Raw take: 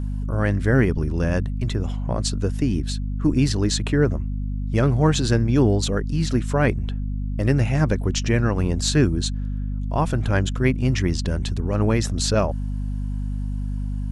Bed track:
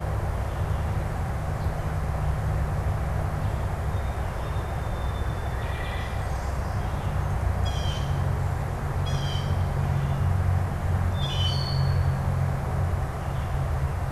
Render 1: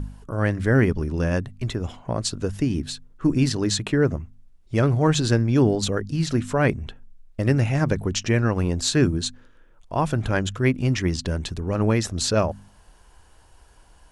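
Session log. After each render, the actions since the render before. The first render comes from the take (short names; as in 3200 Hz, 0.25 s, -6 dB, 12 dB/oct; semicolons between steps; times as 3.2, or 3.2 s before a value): de-hum 50 Hz, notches 5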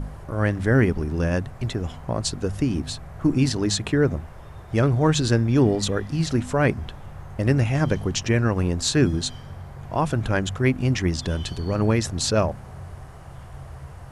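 add bed track -12.5 dB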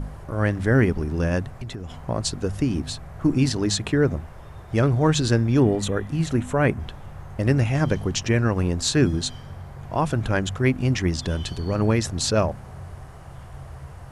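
1.51–1.96 compressor, threshold -29 dBFS; 5.6–6.8 bell 4900 Hz -10.5 dB 0.53 oct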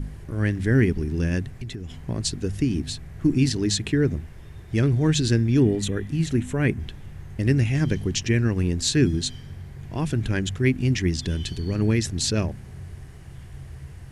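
band shelf 840 Hz -11.5 dB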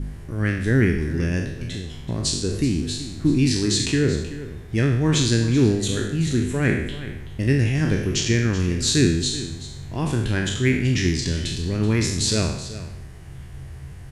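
spectral trails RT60 0.76 s; echo 0.379 s -14.5 dB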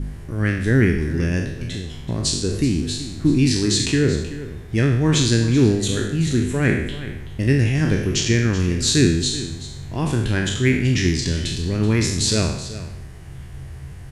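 gain +2 dB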